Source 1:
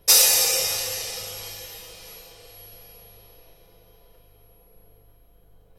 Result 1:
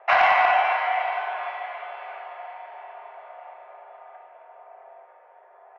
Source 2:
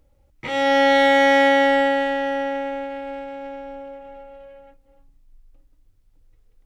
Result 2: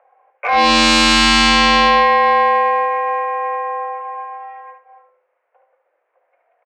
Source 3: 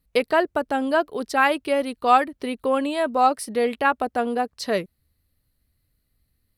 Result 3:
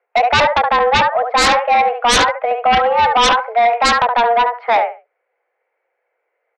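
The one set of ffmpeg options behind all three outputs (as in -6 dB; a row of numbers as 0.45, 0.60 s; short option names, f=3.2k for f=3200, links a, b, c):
-af "highpass=f=280:t=q:w=0.5412,highpass=f=280:t=q:w=1.307,lowpass=f=2k:t=q:w=0.5176,lowpass=f=2k:t=q:w=0.7071,lowpass=f=2k:t=q:w=1.932,afreqshift=230,aecho=1:1:71|142|213:0.447|0.0893|0.0179,aeval=exprs='0.631*sin(PI/2*5.01*val(0)/0.631)':c=same,volume=-4.5dB"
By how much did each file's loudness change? -3.0, +5.0, +9.0 LU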